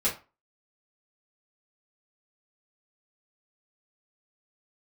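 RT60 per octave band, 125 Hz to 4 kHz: 0.30 s, 0.30 s, 0.30 s, 0.35 s, 0.25 s, 0.25 s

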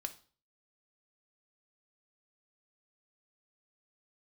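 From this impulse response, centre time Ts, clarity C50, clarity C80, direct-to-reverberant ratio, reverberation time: 5 ms, 15.0 dB, 20.5 dB, 7.0 dB, 0.40 s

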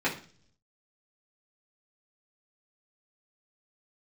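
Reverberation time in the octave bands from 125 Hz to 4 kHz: 0.95 s, 0.70 s, 0.50 s, 0.40 s, 0.40 s, 0.55 s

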